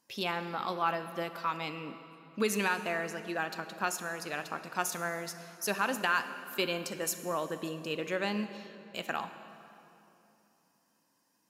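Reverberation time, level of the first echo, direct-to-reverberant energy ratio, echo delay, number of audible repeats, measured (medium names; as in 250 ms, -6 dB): 2.9 s, no echo, 10.0 dB, no echo, no echo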